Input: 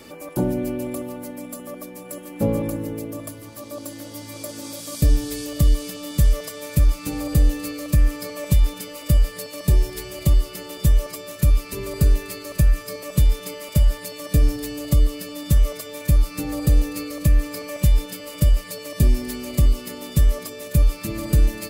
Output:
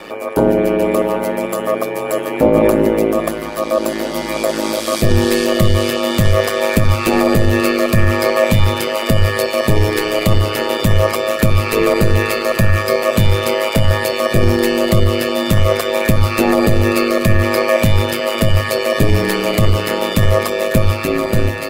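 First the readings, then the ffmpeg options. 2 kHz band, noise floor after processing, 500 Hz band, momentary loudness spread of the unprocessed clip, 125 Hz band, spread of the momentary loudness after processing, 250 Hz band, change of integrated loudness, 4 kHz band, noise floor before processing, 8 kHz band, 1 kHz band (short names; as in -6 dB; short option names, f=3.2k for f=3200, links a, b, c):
+18.0 dB, -23 dBFS, +17.5 dB, 13 LU, +5.5 dB, 5 LU, +10.5 dB, +7.5 dB, +13.5 dB, -39 dBFS, +6.0 dB, +19.0 dB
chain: -af "aeval=exprs='val(0)*sin(2*PI*53*n/s)':c=same,bass=f=250:g=-13,treble=f=4k:g=-14,dynaudnorm=f=100:g=17:m=6dB,bandreject=f=50:t=h:w=6,bandreject=f=100:t=h:w=6,bandreject=f=150:t=h:w=6,bandreject=f=200:t=h:w=6,bandreject=f=250:t=h:w=6,bandreject=f=300:t=h:w=6,bandreject=f=350:t=h:w=6,alimiter=level_in=18.5dB:limit=-1dB:release=50:level=0:latency=1,volume=-1dB"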